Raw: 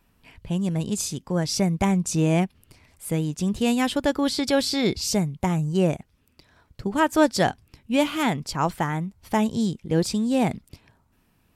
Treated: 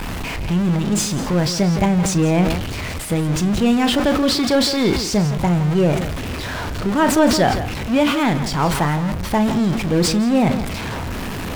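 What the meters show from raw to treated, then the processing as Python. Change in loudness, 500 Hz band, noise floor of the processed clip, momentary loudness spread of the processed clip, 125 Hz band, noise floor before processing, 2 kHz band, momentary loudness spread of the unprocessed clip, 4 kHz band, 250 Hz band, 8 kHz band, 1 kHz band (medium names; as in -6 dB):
+5.5 dB, +5.5 dB, -26 dBFS, 10 LU, +7.0 dB, -65 dBFS, +6.5 dB, 7 LU, +7.0 dB, +6.5 dB, +5.5 dB, +5.5 dB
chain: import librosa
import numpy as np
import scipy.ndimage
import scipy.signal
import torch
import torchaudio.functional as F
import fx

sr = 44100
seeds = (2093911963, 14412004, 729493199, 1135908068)

p1 = x + 0.5 * 10.0 ** (-21.5 / 20.0) * np.sign(x)
p2 = fx.lowpass(p1, sr, hz=3200.0, slope=6)
p3 = fx.doubler(p2, sr, ms=34.0, db=-12)
p4 = p3 + fx.echo_single(p3, sr, ms=166, db=-12.0, dry=0)
p5 = fx.sustainer(p4, sr, db_per_s=52.0)
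y = p5 * librosa.db_to_amplitude(2.0)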